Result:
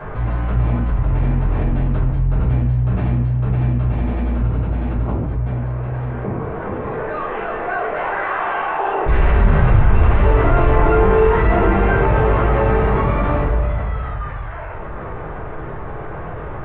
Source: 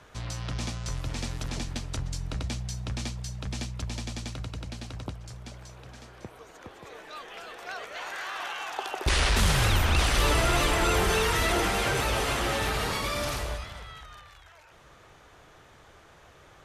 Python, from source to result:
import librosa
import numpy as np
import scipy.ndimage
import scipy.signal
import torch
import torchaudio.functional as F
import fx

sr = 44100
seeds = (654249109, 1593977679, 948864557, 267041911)

y = scipy.ndimage.gaussian_filter1d(x, 4.8, mode='constant')
y = fx.room_shoebox(y, sr, seeds[0], volume_m3=130.0, walls='mixed', distance_m=3.7)
y = fx.env_flatten(y, sr, amount_pct=50)
y = y * 10.0 ** (-6.5 / 20.0)